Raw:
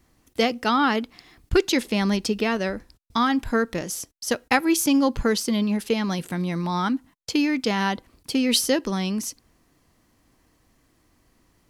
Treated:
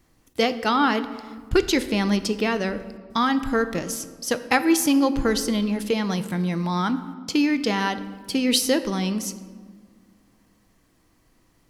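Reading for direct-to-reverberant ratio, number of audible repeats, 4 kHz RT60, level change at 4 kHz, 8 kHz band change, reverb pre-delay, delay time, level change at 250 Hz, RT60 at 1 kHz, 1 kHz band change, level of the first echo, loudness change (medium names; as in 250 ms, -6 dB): 11.0 dB, no echo, 1.0 s, 0.0 dB, 0.0 dB, 3 ms, no echo, +0.5 dB, 1.5 s, +0.5 dB, no echo, +0.5 dB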